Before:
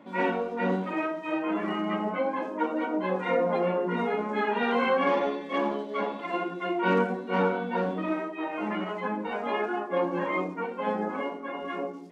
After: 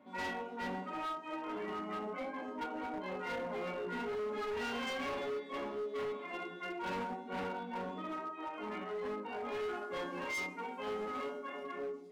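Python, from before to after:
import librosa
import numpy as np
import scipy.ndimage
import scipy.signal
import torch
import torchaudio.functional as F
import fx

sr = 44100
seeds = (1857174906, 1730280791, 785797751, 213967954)

y = fx.high_shelf(x, sr, hz=3000.0, db=11.0, at=(9.71, 11.63))
y = fx.comb_fb(y, sr, f0_hz=84.0, decay_s=0.37, harmonics='odd', damping=0.0, mix_pct=90)
y = np.clip(y, -10.0 ** (-38.0 / 20.0), 10.0 ** (-38.0 / 20.0))
y = F.gain(torch.from_numpy(y), 2.5).numpy()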